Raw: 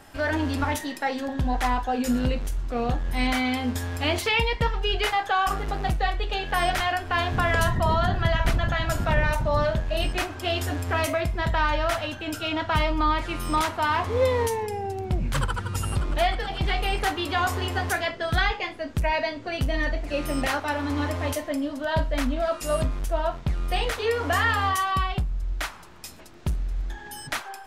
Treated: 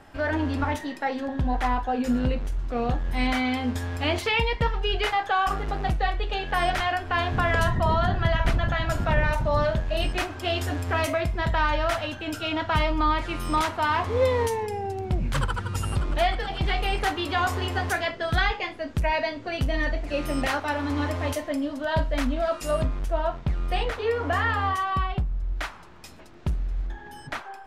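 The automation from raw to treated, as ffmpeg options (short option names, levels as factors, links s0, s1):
-af "asetnsamples=n=441:p=0,asendcmd='2.59 lowpass f 4300;9.37 lowpass f 7300;22.71 lowpass f 3200;23.83 lowpass f 1800;25.56 lowpass f 3100;26.87 lowpass f 1600',lowpass=f=2500:p=1"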